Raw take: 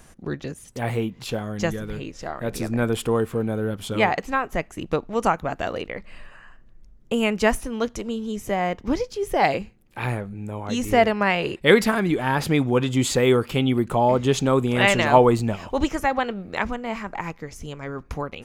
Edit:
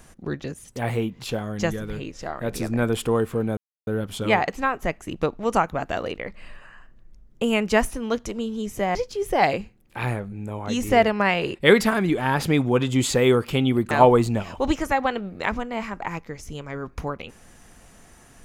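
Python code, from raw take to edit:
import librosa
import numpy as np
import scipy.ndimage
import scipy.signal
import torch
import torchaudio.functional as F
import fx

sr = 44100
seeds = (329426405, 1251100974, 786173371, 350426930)

y = fx.edit(x, sr, fx.insert_silence(at_s=3.57, length_s=0.3),
    fx.cut(start_s=8.65, length_s=0.31),
    fx.cut(start_s=13.92, length_s=1.12), tone=tone)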